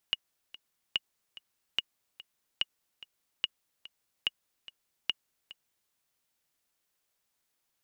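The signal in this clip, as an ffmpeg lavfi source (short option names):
-f lavfi -i "aevalsrc='pow(10,(-14-18.5*gte(mod(t,2*60/145),60/145))/20)*sin(2*PI*2880*mod(t,60/145))*exp(-6.91*mod(t,60/145)/0.03)':d=5.79:s=44100"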